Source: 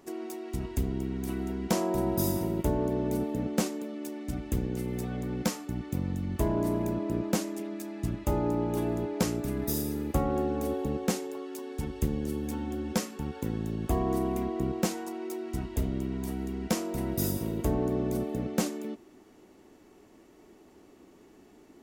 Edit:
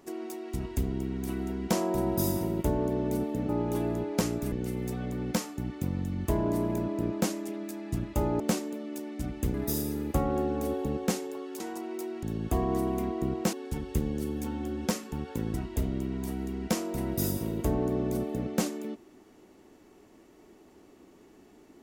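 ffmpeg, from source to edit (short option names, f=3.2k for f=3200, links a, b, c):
-filter_complex "[0:a]asplit=9[a][b][c][d][e][f][g][h][i];[a]atrim=end=3.492[j];[b]atrim=start=8.508:end=9.542[k];[c]atrim=start=4.628:end=8.512[l];[d]atrim=start=3.488:end=4.632[m];[e]atrim=start=9.538:end=11.602[n];[f]atrim=start=14.908:end=15.542[o];[g]atrim=start=13.608:end=14.912[p];[h]atrim=start=11.598:end=13.612[q];[i]atrim=start=15.538[r];[j][k]acrossfade=d=0.004:c1=hsin:c2=hsin[s];[s][l]acrossfade=d=0.004:c1=hsin:c2=hsin[t];[t][m]acrossfade=d=0.004:c1=hsin:c2=hsin[u];[u][n]acrossfade=d=0.004:c1=hsin:c2=hsin[v];[v][o]acrossfade=d=0.004:c1=hsin:c2=hsin[w];[w][p]acrossfade=d=0.004:c1=hsin:c2=hsin[x];[x][q]acrossfade=d=0.004:c1=hsin:c2=hsin[y];[y][r]acrossfade=d=0.004:c1=hsin:c2=hsin"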